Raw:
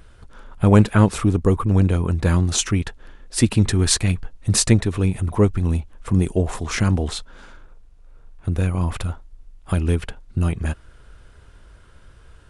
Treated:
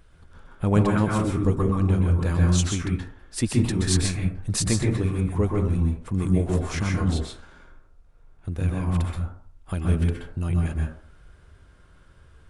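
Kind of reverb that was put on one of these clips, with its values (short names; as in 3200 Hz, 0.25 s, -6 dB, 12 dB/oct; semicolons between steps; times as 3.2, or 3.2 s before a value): plate-style reverb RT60 0.51 s, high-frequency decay 0.4×, pre-delay 0.115 s, DRR -0.5 dB; gain -8 dB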